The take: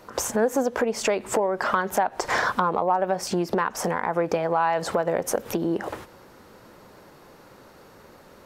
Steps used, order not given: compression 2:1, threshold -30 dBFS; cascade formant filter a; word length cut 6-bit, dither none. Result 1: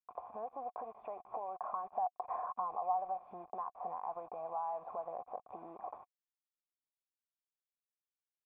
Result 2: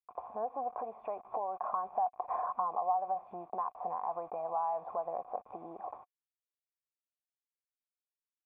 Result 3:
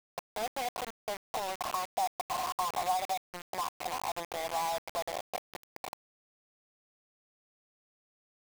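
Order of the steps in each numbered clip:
compression > word length cut > cascade formant filter; word length cut > cascade formant filter > compression; cascade formant filter > compression > word length cut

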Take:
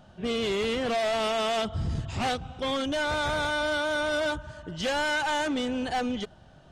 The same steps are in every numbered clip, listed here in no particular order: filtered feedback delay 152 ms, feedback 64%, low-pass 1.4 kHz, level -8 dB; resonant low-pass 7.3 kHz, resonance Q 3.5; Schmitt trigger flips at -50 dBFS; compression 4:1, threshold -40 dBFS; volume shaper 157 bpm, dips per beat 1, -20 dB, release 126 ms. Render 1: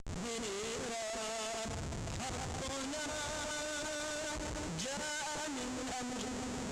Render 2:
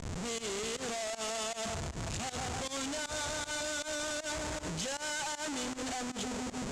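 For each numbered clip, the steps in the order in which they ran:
volume shaper > filtered feedback delay > compression > Schmitt trigger > resonant low-pass; filtered feedback delay > Schmitt trigger > volume shaper > compression > resonant low-pass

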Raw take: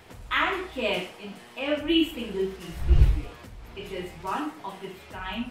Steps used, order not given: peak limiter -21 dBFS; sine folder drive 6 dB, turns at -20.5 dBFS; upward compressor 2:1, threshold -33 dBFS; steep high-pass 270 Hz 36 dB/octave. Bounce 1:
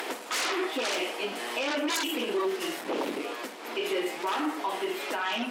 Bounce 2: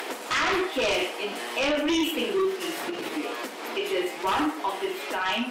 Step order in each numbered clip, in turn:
upward compressor > sine folder > steep high-pass > peak limiter; peak limiter > steep high-pass > upward compressor > sine folder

